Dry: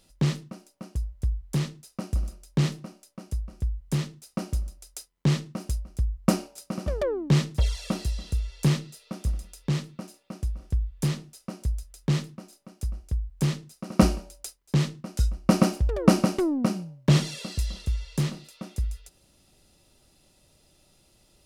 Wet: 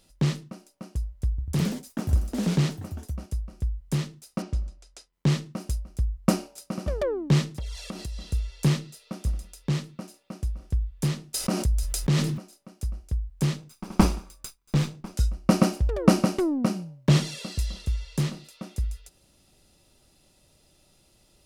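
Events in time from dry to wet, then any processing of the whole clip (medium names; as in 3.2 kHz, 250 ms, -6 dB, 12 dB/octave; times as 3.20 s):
1.29–3.52 s: ever faster or slower copies 94 ms, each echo +3 st, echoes 3
4.42–5.13 s: distance through air 97 m
7.58–8.31 s: compression 5:1, threshold -31 dBFS
11.34–12.38 s: level flattener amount 70%
13.57–15.14 s: comb filter that takes the minimum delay 0.82 ms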